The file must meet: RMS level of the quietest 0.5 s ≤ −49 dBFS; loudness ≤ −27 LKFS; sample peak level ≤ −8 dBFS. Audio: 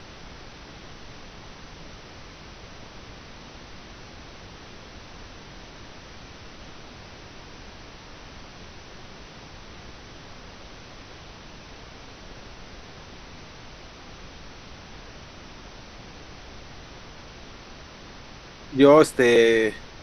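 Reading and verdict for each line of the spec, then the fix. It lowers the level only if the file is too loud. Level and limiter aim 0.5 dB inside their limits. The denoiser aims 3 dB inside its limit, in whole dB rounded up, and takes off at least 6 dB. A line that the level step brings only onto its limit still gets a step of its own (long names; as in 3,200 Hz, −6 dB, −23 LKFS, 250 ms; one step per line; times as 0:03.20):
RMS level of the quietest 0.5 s −44 dBFS: out of spec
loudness −17.5 LKFS: out of spec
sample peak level −2.5 dBFS: out of spec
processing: level −10 dB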